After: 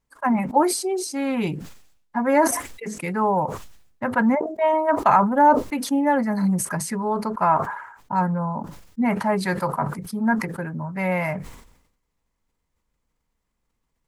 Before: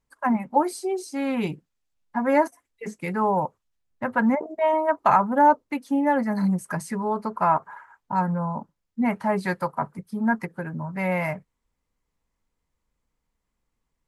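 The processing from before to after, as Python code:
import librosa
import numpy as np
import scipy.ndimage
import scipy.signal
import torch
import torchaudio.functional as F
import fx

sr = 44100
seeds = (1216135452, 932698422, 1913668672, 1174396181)

y = fx.sustainer(x, sr, db_per_s=72.0)
y = y * librosa.db_to_amplitude(1.5)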